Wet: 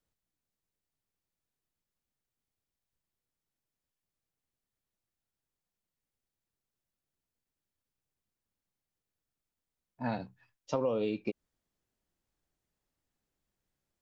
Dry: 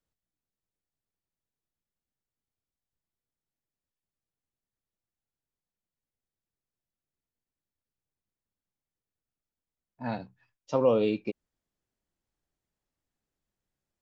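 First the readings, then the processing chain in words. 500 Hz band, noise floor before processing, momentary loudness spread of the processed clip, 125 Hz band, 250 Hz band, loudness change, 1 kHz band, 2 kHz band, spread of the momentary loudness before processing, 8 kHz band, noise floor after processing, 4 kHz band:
-7.0 dB, under -85 dBFS, 13 LU, -3.5 dB, -4.5 dB, -6.5 dB, -4.0 dB, -2.5 dB, 15 LU, no reading, under -85 dBFS, -4.5 dB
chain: compression 5:1, threshold -30 dBFS, peak gain reduction 11 dB; trim +1.5 dB

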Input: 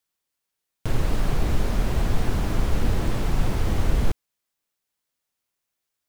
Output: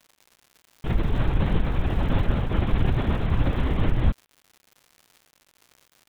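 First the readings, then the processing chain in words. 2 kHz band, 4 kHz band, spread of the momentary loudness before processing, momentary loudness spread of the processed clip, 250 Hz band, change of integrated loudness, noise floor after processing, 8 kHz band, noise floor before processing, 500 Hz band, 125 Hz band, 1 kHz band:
+0.5 dB, -2.0 dB, 4 LU, 3 LU, +2.0 dB, +1.0 dB, -67 dBFS, under -15 dB, -82 dBFS, 0.0 dB, +2.0 dB, 0.0 dB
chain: LPC vocoder at 8 kHz whisper; crackle 190 per s -39 dBFS; trim -1.5 dB

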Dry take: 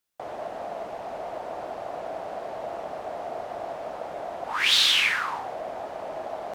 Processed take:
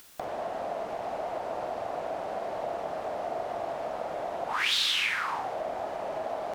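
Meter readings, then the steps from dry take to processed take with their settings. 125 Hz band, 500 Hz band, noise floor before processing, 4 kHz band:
+0.5 dB, +0.5 dB, -38 dBFS, -6.5 dB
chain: upward compressor, threshold -32 dBFS; flutter echo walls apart 7.8 m, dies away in 0.3 s; compression 2.5:1, threshold -27 dBFS, peak gain reduction 8 dB

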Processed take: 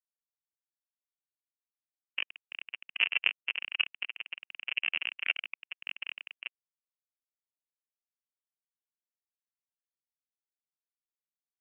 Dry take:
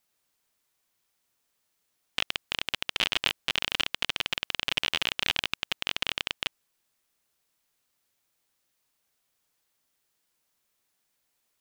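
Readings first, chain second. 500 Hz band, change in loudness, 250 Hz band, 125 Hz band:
-15.5 dB, -4.5 dB, under -20 dB, under -35 dB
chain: mistuned SSB -190 Hz 420–3200 Hz; spectral contrast expander 2.5:1

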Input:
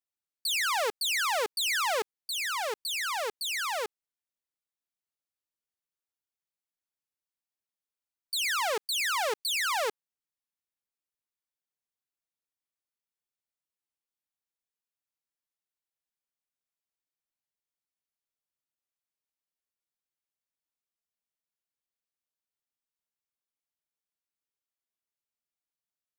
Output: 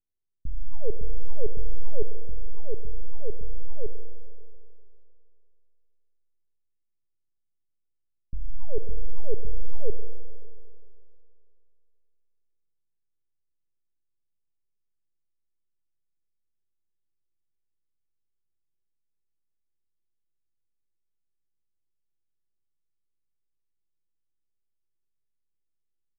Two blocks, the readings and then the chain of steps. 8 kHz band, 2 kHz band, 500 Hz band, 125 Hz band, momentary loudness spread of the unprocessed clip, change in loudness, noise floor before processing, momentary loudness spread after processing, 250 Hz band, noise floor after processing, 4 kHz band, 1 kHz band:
under -40 dB, under -40 dB, -1.0 dB, no reading, 6 LU, -10.5 dB, under -85 dBFS, 15 LU, +6.0 dB, -76 dBFS, under -40 dB, -28.5 dB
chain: comb 2.1 ms, depth 89%; half-wave rectifier; inverse Chebyshev low-pass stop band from 2 kHz, stop band 80 dB; Schroeder reverb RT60 2.5 s, DRR 8.5 dB; tape noise reduction on one side only decoder only; trim +12.5 dB

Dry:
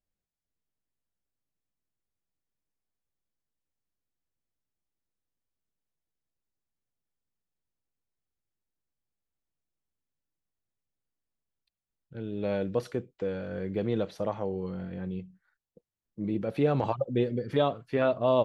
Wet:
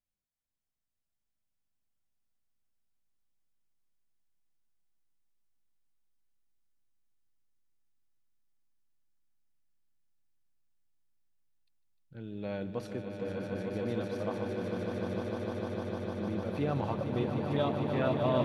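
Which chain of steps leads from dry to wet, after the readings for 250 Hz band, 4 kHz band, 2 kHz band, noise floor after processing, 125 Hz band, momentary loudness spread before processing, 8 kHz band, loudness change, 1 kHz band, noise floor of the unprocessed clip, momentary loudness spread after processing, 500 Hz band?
-2.0 dB, -2.0 dB, -1.5 dB, under -85 dBFS, -1.0 dB, 11 LU, no reading, -3.5 dB, -3.0 dB, under -85 dBFS, 8 LU, -4.5 dB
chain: peaking EQ 450 Hz -5 dB 0.73 oct; on a send: echo with a slow build-up 151 ms, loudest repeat 8, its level -6.5 dB; on the sum: trim -5 dB

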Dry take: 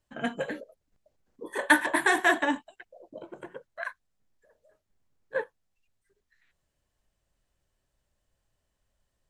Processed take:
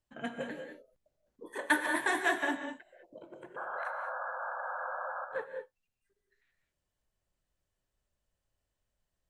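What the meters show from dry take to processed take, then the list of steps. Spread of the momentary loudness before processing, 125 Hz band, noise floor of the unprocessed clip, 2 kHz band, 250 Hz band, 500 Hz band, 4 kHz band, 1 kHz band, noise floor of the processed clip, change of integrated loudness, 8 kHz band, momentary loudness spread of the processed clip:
22 LU, no reading, -80 dBFS, -6.0 dB, -6.5 dB, -5.0 dB, -6.0 dB, -4.0 dB, under -85 dBFS, -7.5 dB, -6.5 dB, 21 LU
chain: painted sound noise, 3.56–5.25 s, 500–1700 Hz -32 dBFS; gated-style reverb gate 230 ms rising, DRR 5 dB; trim -7.5 dB

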